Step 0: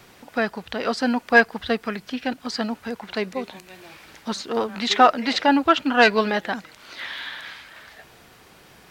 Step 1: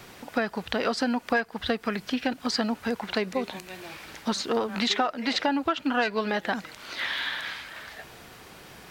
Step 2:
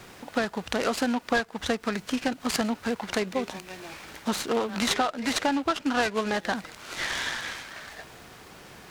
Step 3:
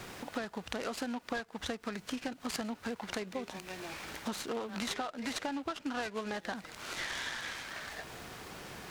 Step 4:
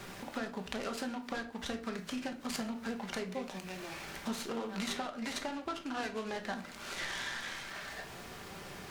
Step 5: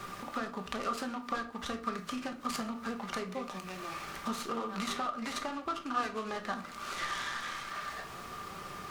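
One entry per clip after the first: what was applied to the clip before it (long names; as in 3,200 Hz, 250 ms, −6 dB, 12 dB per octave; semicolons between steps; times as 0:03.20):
downward compressor 10 to 1, threshold −25 dBFS, peak gain reduction 16.5 dB; level +3 dB
short delay modulated by noise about 2,200 Hz, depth 0.037 ms
downward compressor 2.5 to 1, threshold −41 dBFS, peak gain reduction 14 dB; level +1 dB
rectangular room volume 390 cubic metres, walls furnished, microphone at 1.2 metres; level −2 dB
hollow resonant body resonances 1,200 Hz, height 17 dB, ringing for 40 ms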